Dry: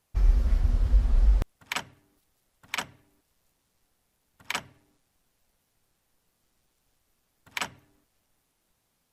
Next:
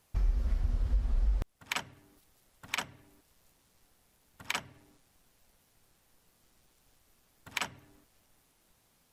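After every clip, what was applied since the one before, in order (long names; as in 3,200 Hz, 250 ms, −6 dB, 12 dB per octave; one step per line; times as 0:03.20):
downward compressor 2 to 1, threshold −41 dBFS, peak gain reduction 14.5 dB
level +5 dB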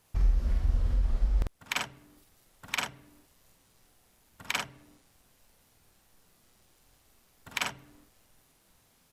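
double-tracking delay 47 ms −2.5 dB
level +1.5 dB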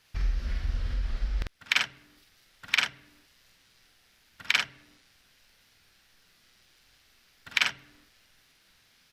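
flat-topped bell 2,800 Hz +11.5 dB 2.3 octaves
level −3.5 dB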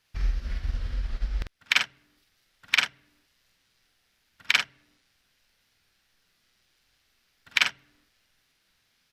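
expander for the loud parts 1.5 to 1, over −41 dBFS
level +3 dB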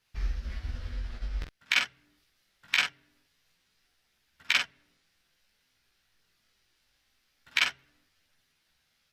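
multi-voice chorus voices 2, 0.24 Hz, delay 16 ms, depth 4.2 ms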